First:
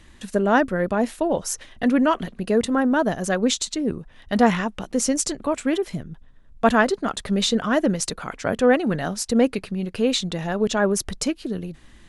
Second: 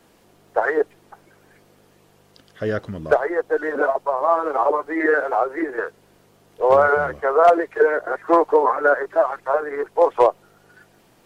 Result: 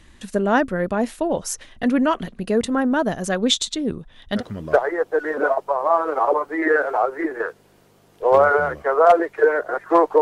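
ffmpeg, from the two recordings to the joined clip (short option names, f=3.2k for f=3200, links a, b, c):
-filter_complex "[0:a]asettb=1/sr,asplit=3[a][b][c];[a]atrim=end=3.364[d];[b]atrim=start=3.36:end=4.43,asetpts=PTS-STARTPTS,afade=t=in:d=0.004:c=qsin,afade=t=out:st=1.066:d=0.004:c=qsin,equalizer=f=3.5k:t=o:w=0.24:g=10.5[e];[c]atrim=start=4.426[f];[d][e]acrossfade=d=0.004:c1=hsin:c2=qsin[g];[g][f]acrossfade=d=0.004:c1=qsin:c2=hsin,apad=whole_dur=10.21,atrim=end=10.21,atrim=end=4.43,asetpts=PTS-STARTPTS[h];[1:a]atrim=start=2.73:end=8.59,asetpts=PTS-STARTPTS[i];[h][i]acrossfade=d=0.08:c1=tri:c2=tri"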